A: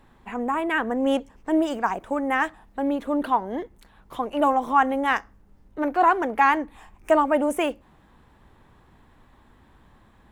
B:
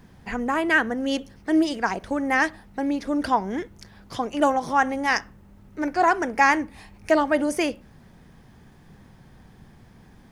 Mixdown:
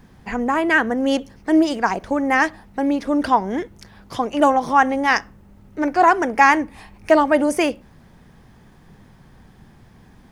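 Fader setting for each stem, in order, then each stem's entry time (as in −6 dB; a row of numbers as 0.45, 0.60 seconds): −4.0, +1.5 decibels; 0.00, 0.00 seconds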